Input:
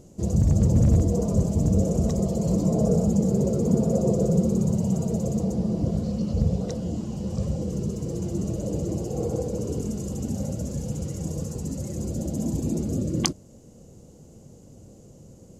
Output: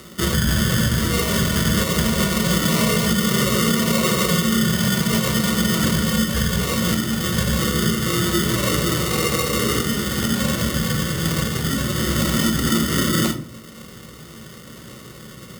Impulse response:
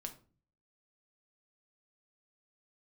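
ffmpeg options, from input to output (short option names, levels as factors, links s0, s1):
-filter_complex "[0:a]tiltshelf=f=1200:g=6,acrusher=samples=27:mix=1:aa=0.000001,bandreject=f=1600:w=14[s0];[1:a]atrim=start_sample=2205[s1];[s0][s1]afir=irnorm=-1:irlink=0,acrossover=split=340[s2][s3];[s3]acontrast=67[s4];[s2][s4]amix=inputs=2:normalize=0,highpass=f=42:w=0.5412,highpass=f=42:w=1.3066,alimiter=limit=0.224:level=0:latency=1:release=387,highshelf=f=2600:g=9.5,volume=1.33"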